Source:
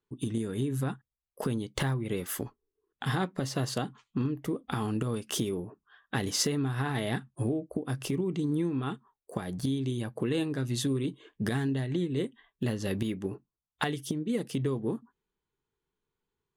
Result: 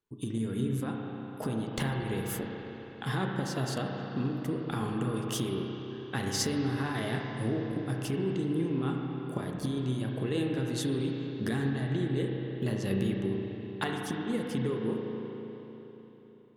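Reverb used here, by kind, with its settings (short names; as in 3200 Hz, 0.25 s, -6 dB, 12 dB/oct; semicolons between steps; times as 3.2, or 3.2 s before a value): spring tank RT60 3.8 s, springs 31/36 ms, chirp 45 ms, DRR 0 dB; gain -3 dB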